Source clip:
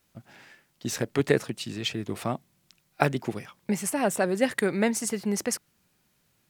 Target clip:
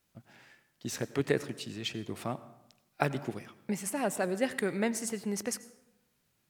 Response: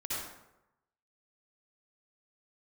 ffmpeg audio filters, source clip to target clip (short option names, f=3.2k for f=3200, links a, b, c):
-filter_complex "[0:a]asplit=2[a][b];[1:a]atrim=start_sample=2205,adelay=22[c];[b][c]afir=irnorm=-1:irlink=0,volume=-19dB[d];[a][d]amix=inputs=2:normalize=0,volume=-6dB"